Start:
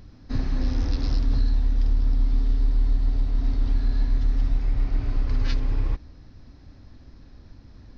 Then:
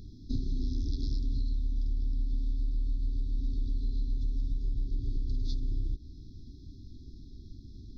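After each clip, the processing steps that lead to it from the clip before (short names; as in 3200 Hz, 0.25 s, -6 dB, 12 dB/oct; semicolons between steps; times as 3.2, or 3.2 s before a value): FFT band-reject 410–3300 Hz; compressor 6:1, threshold -27 dBFS, peak gain reduction 10.5 dB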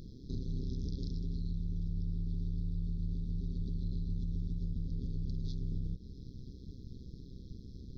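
limiter -29.5 dBFS, peak gain reduction 9 dB; AM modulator 130 Hz, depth 95%; gain +3 dB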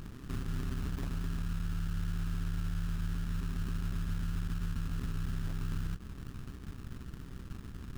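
in parallel at -0.5 dB: limiter -33.5 dBFS, peak gain reduction 7 dB; on the sum: sample-rate reducer 1500 Hz, jitter 20%; gain -2.5 dB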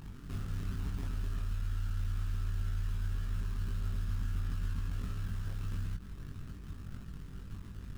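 chorus voices 4, 0.27 Hz, delay 21 ms, depth 1.1 ms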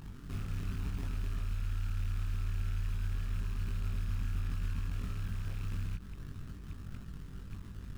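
rattling part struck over -36 dBFS, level -44 dBFS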